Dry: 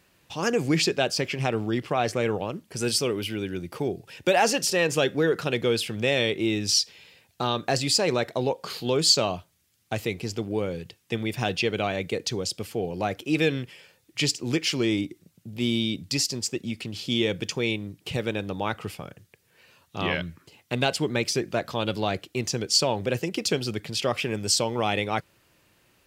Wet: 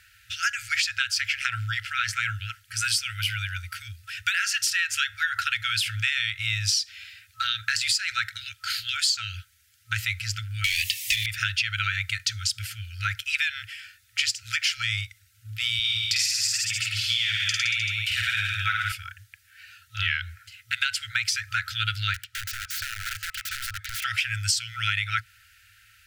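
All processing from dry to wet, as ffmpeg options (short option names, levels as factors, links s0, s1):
-filter_complex "[0:a]asettb=1/sr,asplit=3[s0][s1][s2];[s0]atrim=end=10.644[s3];[s1]atrim=start=10.64:end=11.26,asetpts=PTS-STARTPTS,afade=t=in:d=0.004:c=qsin,afade=t=out:st=0.616:d=0.004:c=qsin,aemphasis=mode=production:type=75kf,asplit=2[s4][s5];[s5]highpass=f=720:p=1,volume=39.8,asoftclip=type=tanh:threshold=0.355[s6];[s4][s6]amix=inputs=2:normalize=0,lowpass=f=3700:p=1,volume=0.501,asuperstop=centerf=1000:order=12:qfactor=0.67[s7];[s2]atrim=start=11.256[s8];[s3][s7]acrossfade=d=0.004:c1=hsin:c2=qsin[s9];[s9][s8]acrossfade=d=0.004:c1=qsin:c2=hsin,asettb=1/sr,asplit=3[s10][s11][s12];[s10]atrim=end=15.794[s13];[s11]atrim=start=15.79:end=18.92,asetpts=PTS-STARTPTS,afade=t=in:d=0.004:c=qsin,afade=t=out:st=3.126:d=0.004:c=qsin,highpass=f=160:p=1,aecho=1:1:50|105|165.5|232|305.3|385.8:0.794|0.631|0.501|0.398|0.316|0.251,atrim=end_sample=138033[s14];[s12]atrim=start=18.916[s15];[s13][s14]acrossfade=d=0.004:c1=hsin:c2=qsin[s16];[s16][s15]acrossfade=d=0.004:c1=qsin:c2=hsin,asettb=1/sr,asplit=3[s17][s18][s19];[s17]atrim=end=22.144[s20];[s18]atrim=start=22.14:end=24.04,asetpts=PTS-STARTPTS,afade=t=in:d=0.004:c=qsin,afade=t=out:st=1.896:d=0.004:c=qsin,lowpass=f=3000:p=1,acompressor=threshold=0.0282:ratio=6:attack=3.2:release=140:knee=1:detection=peak,aeval=exprs='(mod(44.7*val(0)+1,2)-1)/44.7':c=same[s21];[s19]atrim=start=24.036[s22];[s20][s21]acrossfade=d=0.004:c1=hsin:c2=qsin[s23];[s23][s22]acrossfade=d=0.004:c1=qsin:c2=hsin,afftfilt=real='re*(1-between(b*sr/4096,110,1300))':imag='im*(1-between(b*sr/4096,110,1300))':win_size=4096:overlap=0.75,equalizer=f=1200:w=0.73:g=6.5,acompressor=threshold=0.0447:ratio=12,volume=2"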